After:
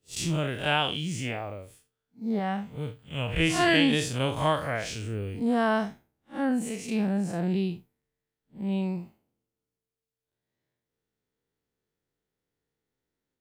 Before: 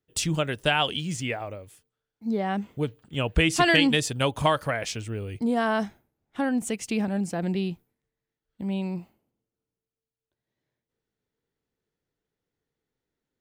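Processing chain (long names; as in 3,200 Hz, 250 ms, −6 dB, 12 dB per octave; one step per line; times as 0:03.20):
spectrum smeared in time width 109 ms
0:02.39–0:03.40: parametric band 330 Hz −9.5 dB 0.81 octaves
level +1 dB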